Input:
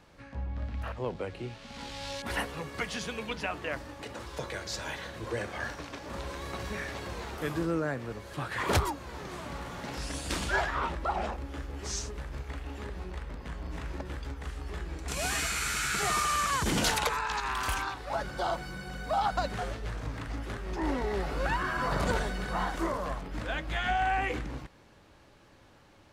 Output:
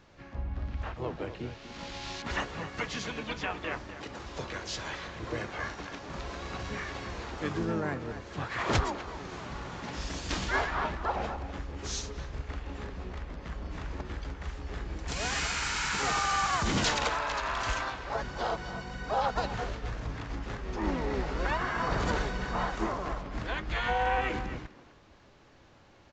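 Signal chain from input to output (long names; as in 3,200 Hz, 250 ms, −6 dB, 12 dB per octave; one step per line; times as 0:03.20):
dynamic equaliser 560 Hz, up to −4 dB, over −50 dBFS, Q 4
pitch-shifted copies added −7 semitones −5 dB, +4 semitones −9 dB
far-end echo of a speakerphone 250 ms, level −11 dB
downsampling to 16,000 Hz
level −1.5 dB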